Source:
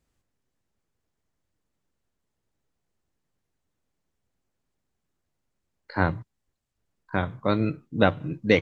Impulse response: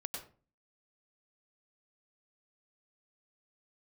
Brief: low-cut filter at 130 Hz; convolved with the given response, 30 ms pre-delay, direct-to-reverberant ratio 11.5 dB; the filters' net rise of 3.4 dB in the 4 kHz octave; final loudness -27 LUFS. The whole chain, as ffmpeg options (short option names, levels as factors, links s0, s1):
-filter_complex "[0:a]highpass=130,equalizer=f=4000:t=o:g=4,asplit=2[s0][s1];[1:a]atrim=start_sample=2205,adelay=30[s2];[s1][s2]afir=irnorm=-1:irlink=0,volume=0.282[s3];[s0][s3]amix=inputs=2:normalize=0,volume=0.944"